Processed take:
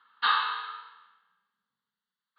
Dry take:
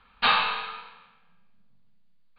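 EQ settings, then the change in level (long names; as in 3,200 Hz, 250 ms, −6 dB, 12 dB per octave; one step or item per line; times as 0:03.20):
band-pass filter 640–3,400 Hz
phaser with its sweep stopped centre 2,400 Hz, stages 6
0.0 dB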